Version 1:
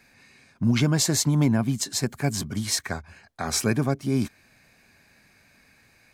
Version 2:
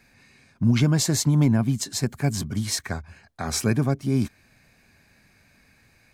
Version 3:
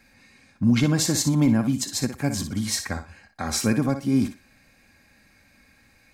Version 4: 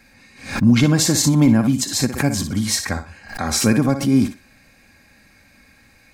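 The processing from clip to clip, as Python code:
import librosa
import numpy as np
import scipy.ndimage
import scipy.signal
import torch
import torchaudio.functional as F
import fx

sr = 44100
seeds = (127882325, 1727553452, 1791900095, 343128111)

y1 = fx.low_shelf(x, sr, hz=180.0, db=7.0)
y1 = y1 * librosa.db_to_amplitude(-1.5)
y2 = y1 + 0.41 * np.pad(y1, (int(3.7 * sr / 1000.0), 0))[:len(y1)]
y2 = fx.echo_thinned(y2, sr, ms=60, feedback_pct=20, hz=170.0, wet_db=-9.0)
y3 = fx.pre_swell(y2, sr, db_per_s=120.0)
y3 = y3 * librosa.db_to_amplitude(5.5)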